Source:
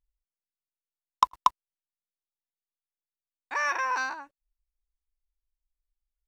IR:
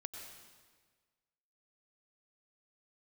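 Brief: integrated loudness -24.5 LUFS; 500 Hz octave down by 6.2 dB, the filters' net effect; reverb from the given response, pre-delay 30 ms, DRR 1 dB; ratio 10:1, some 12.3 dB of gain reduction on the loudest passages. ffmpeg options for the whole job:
-filter_complex "[0:a]equalizer=f=500:t=o:g=-7.5,acompressor=threshold=-32dB:ratio=10,asplit=2[a][b];[1:a]atrim=start_sample=2205,adelay=30[c];[b][c]afir=irnorm=-1:irlink=0,volume=1.5dB[d];[a][d]amix=inputs=2:normalize=0,volume=11.5dB"

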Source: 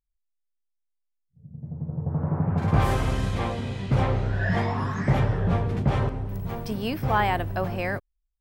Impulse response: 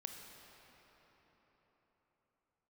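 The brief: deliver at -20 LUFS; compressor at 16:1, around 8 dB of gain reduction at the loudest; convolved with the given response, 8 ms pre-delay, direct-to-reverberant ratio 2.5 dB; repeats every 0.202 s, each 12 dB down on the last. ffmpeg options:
-filter_complex "[0:a]acompressor=threshold=-24dB:ratio=16,aecho=1:1:202|404|606:0.251|0.0628|0.0157,asplit=2[a][b];[1:a]atrim=start_sample=2205,adelay=8[c];[b][c]afir=irnorm=-1:irlink=0,volume=0.5dB[d];[a][d]amix=inputs=2:normalize=0,volume=8dB"

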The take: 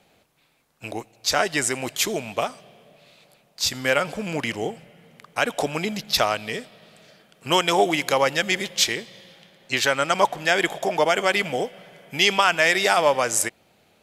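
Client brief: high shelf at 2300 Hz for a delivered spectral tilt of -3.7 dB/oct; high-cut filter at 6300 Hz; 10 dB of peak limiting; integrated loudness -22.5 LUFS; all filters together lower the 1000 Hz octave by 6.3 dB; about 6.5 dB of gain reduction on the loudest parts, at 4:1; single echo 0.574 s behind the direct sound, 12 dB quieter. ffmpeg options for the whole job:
-af "lowpass=6.3k,equalizer=f=1k:t=o:g=-8,highshelf=f=2.3k:g=-4.5,acompressor=threshold=-25dB:ratio=4,alimiter=limit=-22dB:level=0:latency=1,aecho=1:1:574:0.251,volume=11.5dB"

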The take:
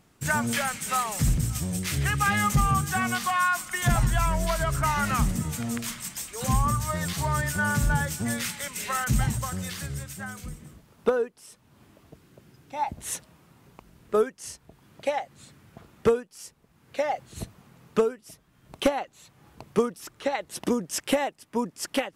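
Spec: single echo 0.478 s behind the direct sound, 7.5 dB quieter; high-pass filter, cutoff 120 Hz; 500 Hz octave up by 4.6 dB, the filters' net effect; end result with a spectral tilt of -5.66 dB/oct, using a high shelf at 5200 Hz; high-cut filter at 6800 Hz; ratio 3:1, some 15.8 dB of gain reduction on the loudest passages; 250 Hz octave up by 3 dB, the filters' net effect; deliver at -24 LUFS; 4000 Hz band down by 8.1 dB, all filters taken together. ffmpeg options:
-af "highpass=120,lowpass=6.8k,equalizer=f=250:t=o:g=3.5,equalizer=f=500:t=o:g=4.5,equalizer=f=4k:t=o:g=-8,highshelf=f=5.2k:g=-7,acompressor=threshold=-35dB:ratio=3,aecho=1:1:478:0.422,volume=13dB"

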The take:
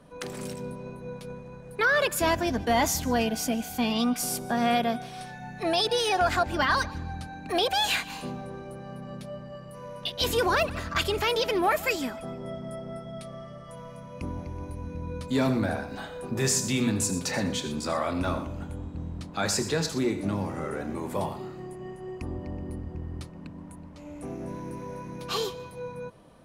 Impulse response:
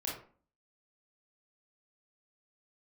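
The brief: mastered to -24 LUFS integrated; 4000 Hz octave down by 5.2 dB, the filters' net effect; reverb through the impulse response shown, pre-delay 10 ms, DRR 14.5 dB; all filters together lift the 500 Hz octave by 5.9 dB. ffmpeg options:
-filter_complex "[0:a]equalizer=f=500:t=o:g=7.5,equalizer=f=4k:t=o:g=-7,asplit=2[a][b];[1:a]atrim=start_sample=2205,adelay=10[c];[b][c]afir=irnorm=-1:irlink=0,volume=-16.5dB[d];[a][d]amix=inputs=2:normalize=0,volume=2.5dB"

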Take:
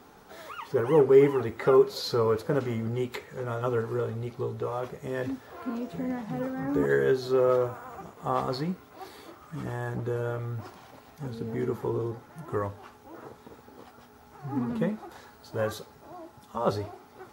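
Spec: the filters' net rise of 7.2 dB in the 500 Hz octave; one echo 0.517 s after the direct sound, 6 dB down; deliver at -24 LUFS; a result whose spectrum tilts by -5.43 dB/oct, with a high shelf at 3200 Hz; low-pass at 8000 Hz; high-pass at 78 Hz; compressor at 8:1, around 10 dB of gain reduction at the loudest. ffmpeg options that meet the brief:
-af "highpass=78,lowpass=8k,equalizer=f=500:t=o:g=9,highshelf=f=3.2k:g=-6,acompressor=threshold=-18dB:ratio=8,aecho=1:1:517:0.501,volume=2.5dB"

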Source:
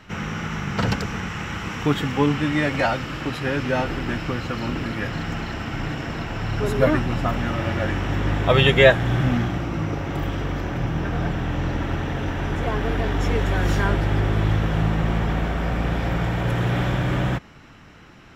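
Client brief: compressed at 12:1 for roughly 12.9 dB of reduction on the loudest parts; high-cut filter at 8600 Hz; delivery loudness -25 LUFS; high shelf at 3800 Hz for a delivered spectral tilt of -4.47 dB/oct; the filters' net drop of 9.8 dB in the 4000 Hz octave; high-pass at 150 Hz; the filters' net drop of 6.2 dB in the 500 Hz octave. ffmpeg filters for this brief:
-af "highpass=150,lowpass=8.6k,equalizer=f=500:t=o:g=-7.5,highshelf=f=3.8k:g=-9,equalizer=f=4k:t=o:g=-8.5,acompressor=threshold=-26dB:ratio=12,volume=6.5dB"

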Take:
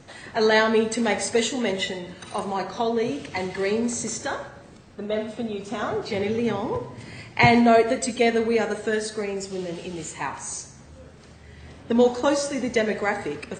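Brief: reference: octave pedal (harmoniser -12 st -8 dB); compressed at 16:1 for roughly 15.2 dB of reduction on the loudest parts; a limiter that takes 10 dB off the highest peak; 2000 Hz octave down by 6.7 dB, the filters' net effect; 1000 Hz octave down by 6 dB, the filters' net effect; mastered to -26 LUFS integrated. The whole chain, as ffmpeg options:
-filter_complex "[0:a]equalizer=f=1k:t=o:g=-8.5,equalizer=f=2k:t=o:g=-5.5,acompressor=threshold=-29dB:ratio=16,alimiter=level_in=2.5dB:limit=-24dB:level=0:latency=1,volume=-2.5dB,asplit=2[a][b];[b]asetrate=22050,aresample=44100,atempo=2,volume=-8dB[c];[a][c]amix=inputs=2:normalize=0,volume=9.5dB"

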